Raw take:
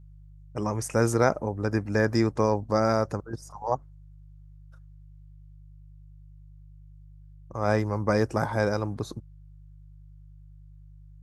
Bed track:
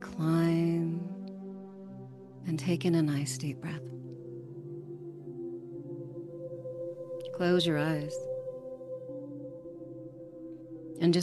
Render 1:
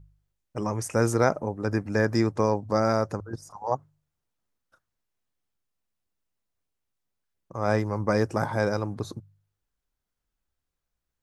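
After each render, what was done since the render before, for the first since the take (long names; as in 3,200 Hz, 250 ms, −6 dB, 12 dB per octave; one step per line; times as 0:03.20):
hum removal 50 Hz, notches 3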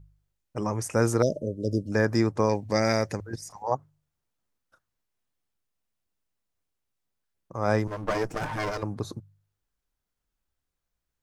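0:01.22–0:01.92: linear-phase brick-wall band-stop 650–2,800 Hz
0:02.49–0:03.63: high shelf with overshoot 1,600 Hz +6.5 dB, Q 3
0:07.87–0:08.83: lower of the sound and its delayed copy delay 6.6 ms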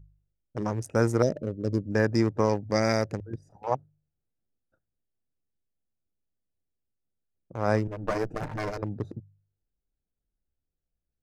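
adaptive Wiener filter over 41 samples
dynamic equaliser 3,300 Hz, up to −4 dB, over −52 dBFS, Q 2.7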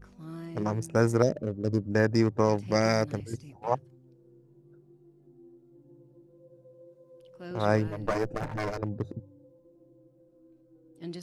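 mix in bed track −14 dB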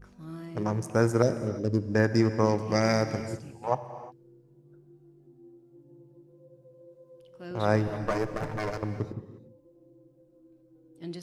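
reverb whose tail is shaped and stops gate 380 ms flat, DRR 10 dB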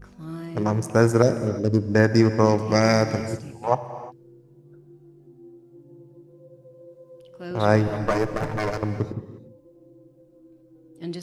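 level +6 dB
brickwall limiter −3 dBFS, peak gain reduction 1 dB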